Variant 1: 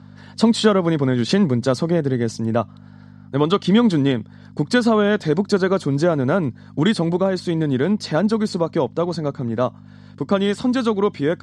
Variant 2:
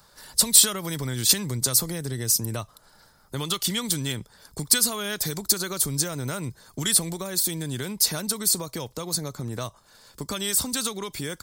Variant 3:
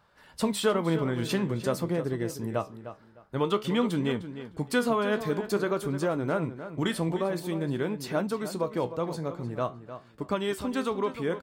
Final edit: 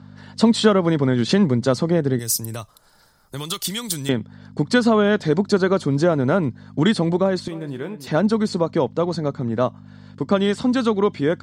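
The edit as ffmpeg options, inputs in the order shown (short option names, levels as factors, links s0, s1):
-filter_complex "[0:a]asplit=3[s0][s1][s2];[s0]atrim=end=2.192[s3];[1:a]atrim=start=2.188:end=4.092[s4];[s1]atrim=start=4.088:end=7.482[s5];[2:a]atrim=start=7.478:end=8.072[s6];[s2]atrim=start=8.068[s7];[s3][s4]acrossfade=d=0.004:c1=hsin:c2=hsin[s8];[s8][s5]acrossfade=d=0.004:c1=hsin:c2=hsin[s9];[s9][s6]acrossfade=d=0.004:c1=hsin:c2=hsin[s10];[s10][s7]acrossfade=d=0.004:c1=hsin:c2=hsin"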